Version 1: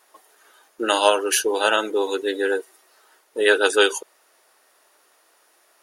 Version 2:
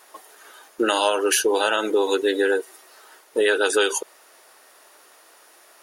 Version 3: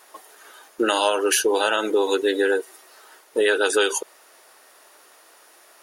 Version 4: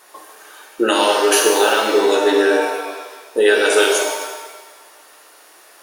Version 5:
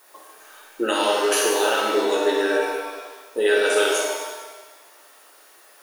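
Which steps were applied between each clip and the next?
in parallel at +3 dB: peak limiter -14 dBFS, peak gain reduction 11 dB; on the sum: compression 3:1, threshold -18 dBFS, peak gain reduction 8.5 dB
no audible change
pitch-shifted reverb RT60 1.3 s, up +7 st, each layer -8 dB, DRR -0.5 dB; trim +2 dB
added noise violet -52 dBFS; reverberation RT60 0.70 s, pre-delay 4 ms, DRR 4 dB; trim -7 dB

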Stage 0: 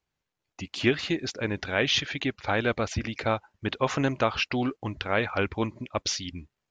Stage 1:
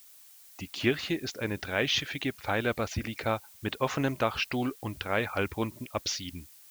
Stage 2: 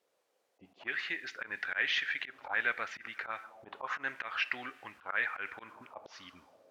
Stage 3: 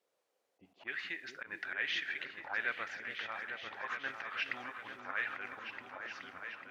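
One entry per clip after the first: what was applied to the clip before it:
added noise blue -51 dBFS; trim -3 dB
two-slope reverb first 0.52 s, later 4.4 s, from -17 dB, DRR 14 dB; slow attack 116 ms; auto-wah 420–1800 Hz, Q 3.6, up, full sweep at -32 dBFS; trim +7.5 dB
delay with an opening low-pass 423 ms, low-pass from 400 Hz, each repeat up 2 oct, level -3 dB; trim -4.5 dB

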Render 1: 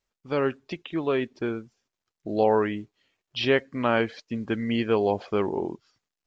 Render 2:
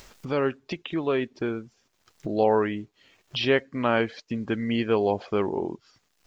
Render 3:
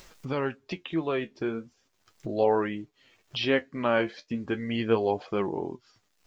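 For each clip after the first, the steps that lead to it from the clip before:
upward compressor, threshold -26 dBFS
flange 0.37 Hz, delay 5.4 ms, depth 9.3 ms, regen +49%; trim +1.5 dB

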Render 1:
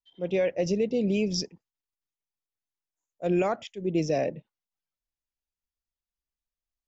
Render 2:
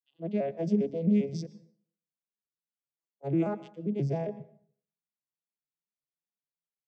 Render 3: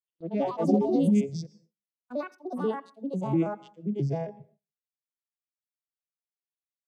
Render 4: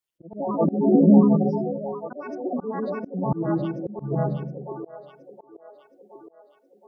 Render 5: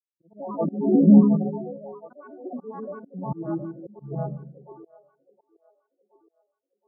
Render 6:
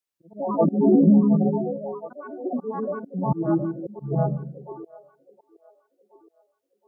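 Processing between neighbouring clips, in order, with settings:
vocoder on a broken chord minor triad, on C#3, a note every 133 ms; plate-style reverb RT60 0.54 s, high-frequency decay 0.8×, pre-delay 105 ms, DRR 18 dB; trim -1.5 dB
spectral noise reduction 9 dB; ever faster or slower copies 142 ms, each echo +5 st, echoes 2; gate with hold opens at -52 dBFS; trim +2 dB
spectral gate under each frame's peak -20 dB strong; two-band feedback delay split 410 Hz, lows 144 ms, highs 719 ms, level -5 dB; slow attack 247 ms; trim +7 dB
resonant low-pass 1.4 kHz, resonance Q 1.7; spectral contrast expander 1.5:1
compression 6:1, threshold -20 dBFS, peak gain reduction 11.5 dB; trim +7 dB

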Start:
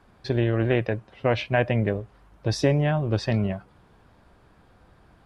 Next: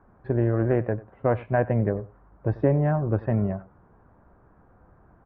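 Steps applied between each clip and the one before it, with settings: low-pass 1.5 kHz 24 dB/octave; delay 94 ms -19.5 dB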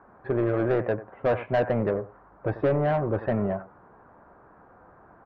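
overdrive pedal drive 21 dB, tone 2.2 kHz, clips at -9 dBFS; distance through air 110 m; trim -4.5 dB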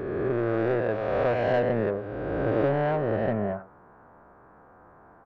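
reverse spectral sustain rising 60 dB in 2.18 s; trim -3.5 dB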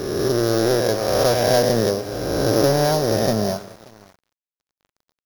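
sorted samples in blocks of 8 samples; multi-tap echo 188/583 ms -16.5/-19.5 dB; crossover distortion -45 dBFS; trim +7.5 dB

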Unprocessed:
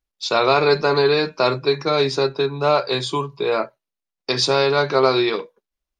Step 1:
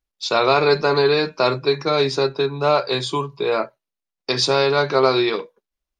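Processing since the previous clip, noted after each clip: no audible change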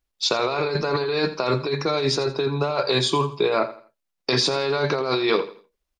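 compressor with a negative ratio -22 dBFS, ratio -1; feedback delay 83 ms, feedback 31%, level -15 dB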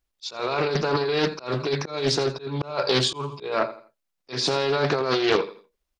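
slow attack 222 ms; loudspeaker Doppler distortion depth 0.38 ms

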